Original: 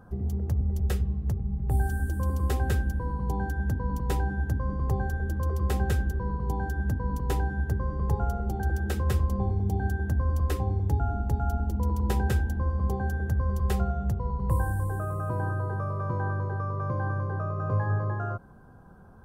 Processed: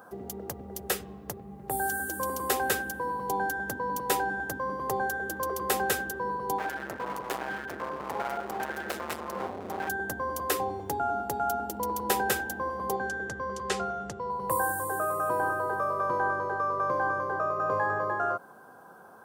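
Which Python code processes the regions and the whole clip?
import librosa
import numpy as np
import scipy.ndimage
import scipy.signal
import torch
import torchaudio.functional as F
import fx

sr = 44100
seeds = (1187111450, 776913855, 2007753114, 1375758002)

y = fx.chain(x, sr, fx.lowpass(hz=4000.0, slope=6),
    fx.clip_hard(threshold_db=-30.0), at=(6.58, 9.89))
y = fx.chain(y, sr, fx.lowpass(hz=7800.0, slope=24),
    fx.peak_eq(hz=750.0, db=-6.0, octaves=0.79), at=(12.96, 14.3))
y = scipy.signal.sosfilt(scipy.signal.butter(2, 480.0, 'highpass', fs=sr, output='sos'), y)
y = fx.high_shelf(y, sr, hz=9800.0, db=10.0)
y = F.gain(torch.from_numpy(y), 8.0).numpy()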